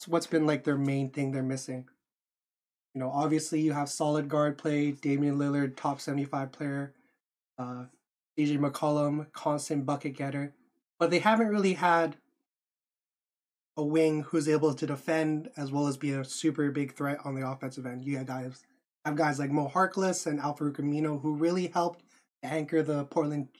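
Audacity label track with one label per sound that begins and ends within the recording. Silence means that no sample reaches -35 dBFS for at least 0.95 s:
2.960000	12.120000	sound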